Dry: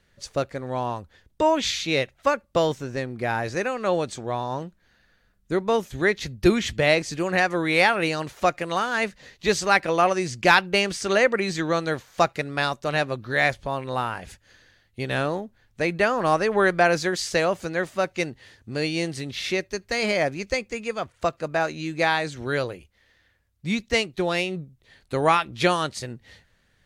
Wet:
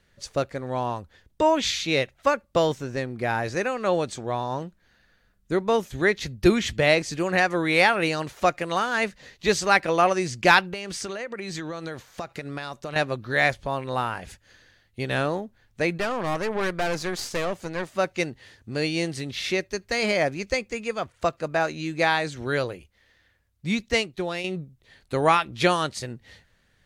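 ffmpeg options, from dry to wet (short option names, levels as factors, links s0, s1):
-filter_complex "[0:a]asettb=1/sr,asplit=3[s0][s1][s2];[s0]atrim=end=10.614[s3];[s1]atrim=start=10.61:end=12.96,asetpts=PTS-STARTPTS,afade=t=in:d=0.004:c=qsin,afade=t=out:st=2.346:d=0.004:c=qsin,acompressor=threshold=0.0398:ratio=20:attack=3.2:release=140:knee=1:detection=peak[s4];[s2]atrim=start=12.956[s5];[s3][s4]acrossfade=d=0.004:c1=hsin:c2=qsin[s6];[s6][s5]acrossfade=d=0.004:c1=qsin:c2=hsin,asettb=1/sr,asplit=3[s7][s8][s9];[s7]atrim=end=15.984[s10];[s8]atrim=start=15.98:end=17.95,asetpts=PTS-STARTPTS,afade=t=in:d=0.004:c=qsin,afade=t=out:st=1.966:d=0.004:c=qsin,aeval=exprs='(tanh(12.6*val(0)+0.7)-tanh(0.7))/12.6':c=same[s11];[s9]atrim=start=17.946[s12];[s10][s11]acrossfade=d=0.004:c1=hsin:c2=qsin[s13];[s13][s12]acrossfade=d=0.004:c1=qsin:c2=hsin,asplit=2[s14][s15];[s14]atrim=end=24.44,asetpts=PTS-STARTPTS,afade=t=out:st=23.88:d=0.56:silence=0.398107[s16];[s15]atrim=start=24.44,asetpts=PTS-STARTPTS,afade=t=in:d=0.004:c=hsin:silence=0.398107[s17];[s16][s17]concat=n=2:v=0:a=1"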